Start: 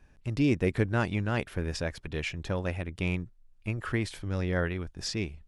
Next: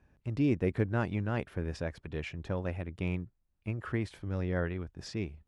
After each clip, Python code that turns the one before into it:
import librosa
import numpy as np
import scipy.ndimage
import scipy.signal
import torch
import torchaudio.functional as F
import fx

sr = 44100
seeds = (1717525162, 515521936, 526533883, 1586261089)

y = scipy.signal.sosfilt(scipy.signal.butter(2, 50.0, 'highpass', fs=sr, output='sos'), x)
y = fx.high_shelf(y, sr, hz=2500.0, db=-11.0)
y = y * librosa.db_to_amplitude(-2.5)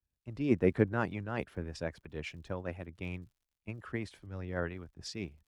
y = fx.hpss(x, sr, part='harmonic', gain_db=-7)
y = fx.dmg_crackle(y, sr, seeds[0], per_s=110.0, level_db=-58.0)
y = fx.band_widen(y, sr, depth_pct=70)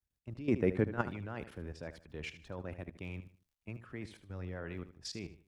y = fx.level_steps(x, sr, step_db=15)
y = fx.echo_feedback(y, sr, ms=76, feedback_pct=30, wet_db=-13.0)
y = y * librosa.db_to_amplitude(3.0)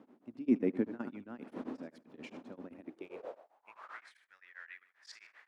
y = fx.dmg_wind(x, sr, seeds[1], corner_hz=620.0, level_db=-48.0)
y = fx.filter_sweep_highpass(y, sr, from_hz=250.0, to_hz=1800.0, start_s=2.79, end_s=4.13, q=5.1)
y = y * np.abs(np.cos(np.pi * 7.6 * np.arange(len(y)) / sr))
y = y * librosa.db_to_amplitude(-6.0)